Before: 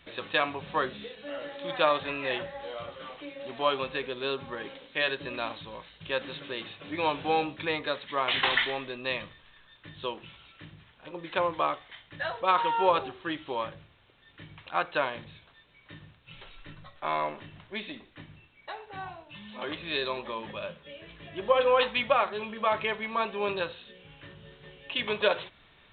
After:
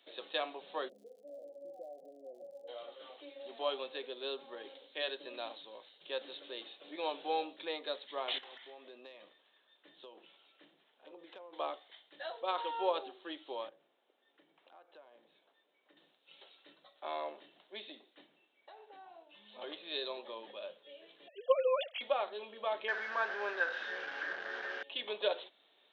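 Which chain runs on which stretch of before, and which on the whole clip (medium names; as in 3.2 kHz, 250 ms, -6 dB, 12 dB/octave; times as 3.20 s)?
0.88–2.67 s: compression 3:1, threshold -35 dBFS + rippled Chebyshev low-pass 760 Hz, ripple 6 dB + crackle 88 per s -52 dBFS
8.38–11.53 s: tone controls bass 0 dB, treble -12 dB + compression 8:1, threshold -39 dBFS
13.69–15.97 s: Bessel low-pass 1.8 kHz + compression 4:1, threshold -49 dBFS
18.27–19.46 s: low-pass 3.2 kHz + compression 4:1, threshold -42 dBFS
21.28–22.01 s: formants replaced by sine waves + treble shelf 2.5 kHz +10 dB
22.88–24.83 s: one-bit delta coder 32 kbps, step -28 dBFS + resonant low-pass 1.6 kHz, resonance Q 11 + tilt EQ +2 dB/octave
whole clip: Bessel high-pass 450 Hz, order 6; high-order bell 1.6 kHz -9 dB; trim -5 dB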